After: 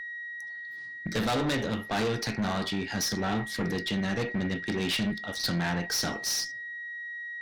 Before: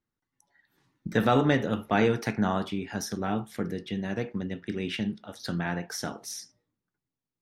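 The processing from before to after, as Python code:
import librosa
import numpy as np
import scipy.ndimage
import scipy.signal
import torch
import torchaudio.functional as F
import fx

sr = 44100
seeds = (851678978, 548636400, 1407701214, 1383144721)

y = fx.tracing_dist(x, sr, depth_ms=0.039)
y = fx.peak_eq(y, sr, hz=4500.0, db=13.0, octaves=0.83)
y = y + 10.0 ** (-42.0 / 20.0) * np.sin(2.0 * np.pi * 1900.0 * np.arange(len(y)) / sr)
y = fx.rider(y, sr, range_db=4, speed_s=2.0)
y = fx.tube_stage(y, sr, drive_db=28.0, bias=0.3)
y = F.gain(torch.from_numpy(y), 3.5).numpy()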